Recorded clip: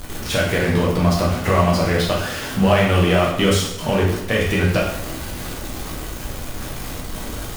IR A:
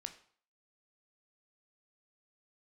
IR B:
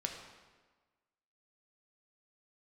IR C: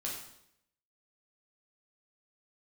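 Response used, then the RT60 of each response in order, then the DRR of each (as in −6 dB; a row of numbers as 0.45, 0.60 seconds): C; 0.50, 1.4, 0.75 seconds; 7.0, 2.0, −4.0 decibels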